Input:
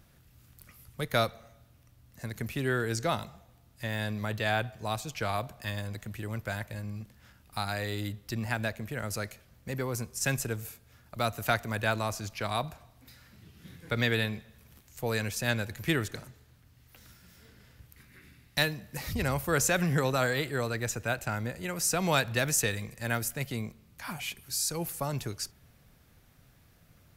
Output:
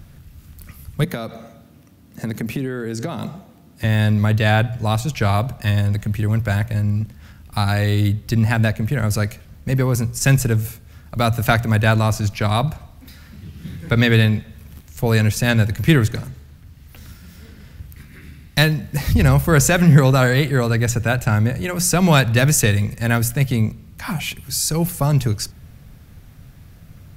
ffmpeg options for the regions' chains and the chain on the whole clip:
-filter_complex "[0:a]asettb=1/sr,asplit=3[a][b][c];[a]atrim=end=1.044[d];[b]atrim=start=1.04:end=3.84,asetpts=PTS-STARTPTS,afade=t=in:d=0.004:c=qsin,afade=t=out:st=2.796:d=0.004:c=qsin,highpass=160,equalizer=f=290:w=0.63:g=7,acompressor=threshold=-34dB:ratio=20:attack=3.2:release=140:knee=1:detection=peak[e];[c]atrim=start=3.836[f];[d][e]acrossfade=d=0.004:c1=hsin:c2=qsin[g];[g][f]acrossfade=d=0.004:c1=qsin:c2=hsin,bass=f=250:g=10,treble=f=4k:g=-1,bandreject=f=60:t=h:w=6,bandreject=f=120:t=h:w=6,bandreject=f=180:t=h:w=6,acontrast=57,volume=4dB"

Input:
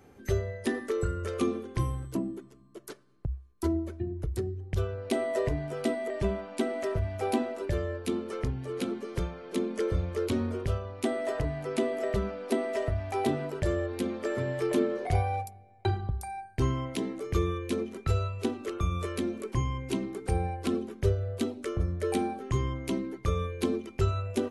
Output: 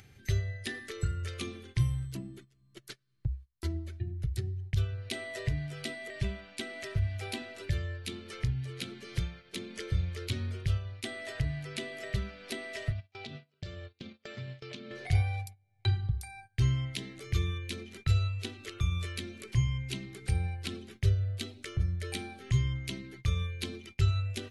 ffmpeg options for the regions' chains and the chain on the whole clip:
-filter_complex "[0:a]asettb=1/sr,asplit=3[a][b][c];[a]atrim=end=12.924[d];[b]atrim=start=12.92:end=14.91,asetpts=PTS-STARTPTS,afade=t=in:d=0.004:c=qsin,afade=t=out:st=1.986:d=0.004:c=qsin,agate=range=-18dB:threshold=-32dB:ratio=16:release=100:detection=peak,highpass=120,equalizer=f=140:t=q:w=4:g=-5,equalizer=f=220:t=q:w=4:g=7,equalizer=f=320:t=q:w=4:g=-9,equalizer=f=860:t=q:w=4:g=-4,equalizer=f=1.8k:t=q:w=4:g=-8,lowpass=f=5.7k:w=0.5412,lowpass=f=5.7k:w=1.3066,acompressor=threshold=-32dB:ratio=5:attack=3.2:release=140:knee=1:detection=peak[e];[c]atrim=start=14.906[f];[d][e]acrossfade=d=0.004:c1=hsin:c2=qsin[g];[g][f]acrossfade=d=0.004:c1=qsin:c2=hsin,agate=range=-19dB:threshold=-42dB:ratio=16:detection=peak,equalizer=f=125:t=o:w=1:g=9,equalizer=f=250:t=o:w=1:g=-11,equalizer=f=500:t=o:w=1:g=-9,equalizer=f=1k:t=o:w=1:g=-12,equalizer=f=2k:t=o:w=1:g=5,equalizer=f=4k:t=o:w=1:g=7,acompressor=mode=upward:threshold=-36dB:ratio=2.5,volume=-2.5dB"

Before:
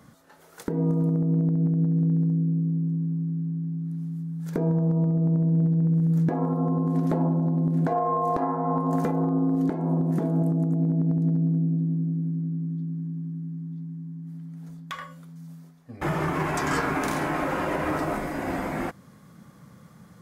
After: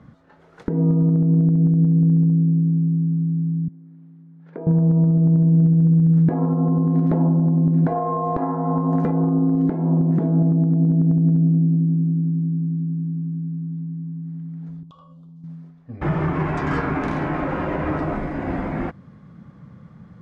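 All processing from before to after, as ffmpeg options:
-filter_complex "[0:a]asettb=1/sr,asplit=3[a][b][c];[a]atrim=end=3.684[d];[b]atrim=start=3.68:end=4.67,asetpts=PTS-STARTPTS,afade=t=in:d=0.004:c=qsin,afade=t=out:st=0.986:d=0.004:c=qsin,highpass=530,lowpass=2.2k,equalizer=f=1.2k:w=0.72:g=-5.5[e];[c]atrim=start=4.666[f];[d][e]acrossfade=d=0.004:c1=hsin:c2=qsin[g];[g][f]acrossfade=d=0.004:c1=qsin:c2=hsin,asettb=1/sr,asplit=3[h][i][j];[h]atrim=end=14.834[k];[i]atrim=start=14.83:end=15.44,asetpts=PTS-STARTPTS,afade=t=in:d=0.004:c=qsin,afade=t=out:st=0.606:d=0.004:c=qsin,asuperstop=centerf=1900:order=8:qfactor=1.1,agate=range=-33dB:threshold=-41dB:ratio=3:release=100:detection=peak,acompressor=threshold=-47dB:ratio=6:attack=3.2:release=140:knee=1:detection=peak[l];[j]atrim=start=15.436[m];[k][l]acrossfade=d=0.004:c1=hsin:c2=qsin[n];[n][m]acrossfade=d=0.004:c1=qsin:c2=hsin,lowpass=2.9k,lowshelf=f=240:g=10"

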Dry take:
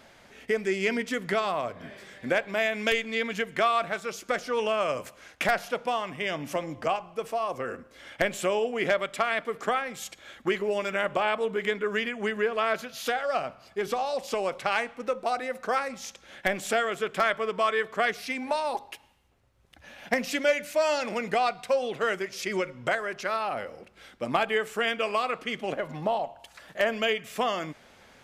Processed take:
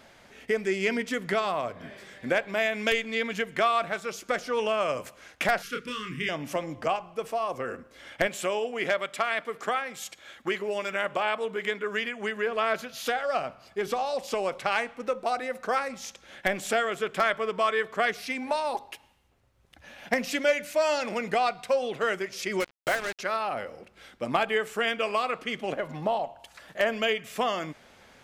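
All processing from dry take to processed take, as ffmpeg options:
-filter_complex "[0:a]asettb=1/sr,asplit=3[a][b][c];[a]atrim=end=5.624[d];[b]atrim=start=5.62:end=6.29,asetpts=PTS-STARTPTS,afade=t=in:d=0.004:c=qsin,afade=t=out:st=0.666:d=0.004:c=qsin,asubboost=boost=8.5:cutoff=240,asuperstop=centerf=730:order=8:qfactor=0.96,asplit=2[e][f];[f]adelay=28,volume=-4dB[g];[e][g]amix=inputs=2:normalize=0,atrim=end_sample=29547[h];[c]atrim=start=6.286[i];[d][h]acrossfade=d=0.004:c1=hsin:c2=qsin[j];[j][i]acrossfade=d=0.004:c1=qsin:c2=hsin,asettb=1/sr,asplit=3[k][l][m];[k]atrim=end=8.274[n];[l]atrim=start=8.27:end=12.47,asetpts=PTS-STARTPTS,afade=t=in:d=0.004:c=qsin,afade=t=out:st=4.196:d=0.004:c=qsin,highpass=f=110:p=1,equalizer=f=230:w=0.39:g=-3.5[o];[m]atrim=start=12.466[p];[n][o]acrossfade=d=0.004:c1=hsin:c2=qsin[q];[q][p]acrossfade=d=0.004:c1=qsin:c2=hsin,asettb=1/sr,asplit=3[r][s][t];[r]atrim=end=22.604[u];[s]atrim=start=22.6:end=23.19,asetpts=PTS-STARTPTS,afade=t=in:d=0.004:c=qsin,afade=t=out:st=0.586:d=0.004:c=qsin,equalizer=f=60:w=0.89:g=-11,acrusher=bits=4:mix=0:aa=0.5[v];[t]atrim=start=23.186[w];[u][v]acrossfade=d=0.004:c1=hsin:c2=qsin[x];[x][w]acrossfade=d=0.004:c1=qsin:c2=hsin"

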